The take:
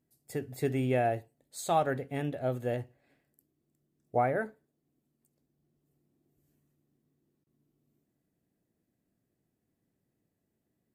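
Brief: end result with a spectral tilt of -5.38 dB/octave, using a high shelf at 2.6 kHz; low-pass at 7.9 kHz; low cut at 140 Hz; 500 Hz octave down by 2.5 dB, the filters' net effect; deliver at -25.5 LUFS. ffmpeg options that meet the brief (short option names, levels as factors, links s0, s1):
-af "highpass=140,lowpass=7900,equalizer=f=500:t=o:g=-3.5,highshelf=f=2600:g=4,volume=2.66"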